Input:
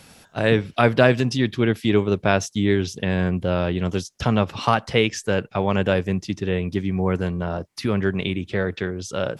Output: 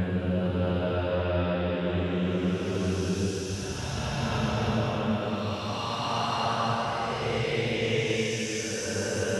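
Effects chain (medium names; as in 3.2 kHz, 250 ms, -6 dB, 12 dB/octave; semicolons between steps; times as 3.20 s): compression, threshold -22 dBFS, peak gain reduction 11.5 dB; Paulstretch 4.7×, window 0.50 s, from 3.31 s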